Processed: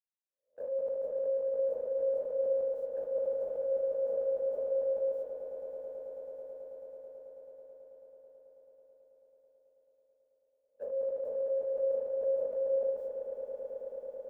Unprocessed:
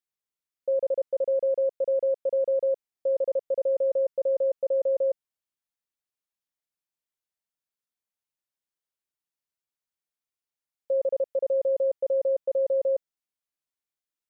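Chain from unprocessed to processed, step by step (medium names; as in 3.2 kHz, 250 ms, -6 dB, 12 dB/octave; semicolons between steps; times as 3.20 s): reverse spectral sustain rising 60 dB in 0.40 s; gate -39 dBFS, range -29 dB; high-order bell 500 Hz -10 dB 1.3 oct; in parallel at +3 dB: compressor with a negative ratio -45 dBFS, ratio -1; on the sum: peak limiter -30 dBFS, peak gain reduction 7.5 dB; echo with a slow build-up 109 ms, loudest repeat 8, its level -11 dB; on a send at -6 dB: reverberation RT60 0.60 s, pre-delay 37 ms; on the sum: trim -2 dB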